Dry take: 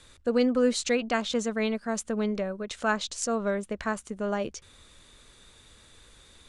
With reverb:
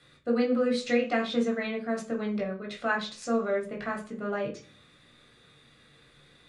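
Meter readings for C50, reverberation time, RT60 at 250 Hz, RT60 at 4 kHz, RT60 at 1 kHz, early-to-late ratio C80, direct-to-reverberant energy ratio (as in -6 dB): 10.5 dB, 0.40 s, 0.65 s, 0.60 s, 0.40 s, 17.0 dB, -1.5 dB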